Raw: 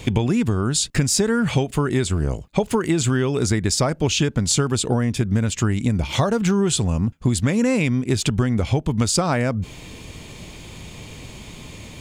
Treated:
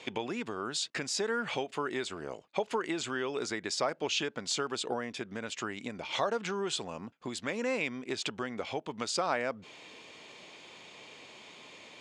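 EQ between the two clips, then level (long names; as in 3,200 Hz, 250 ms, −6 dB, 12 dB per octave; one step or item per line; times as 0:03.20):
band-pass filter 470–4,800 Hz
−7.0 dB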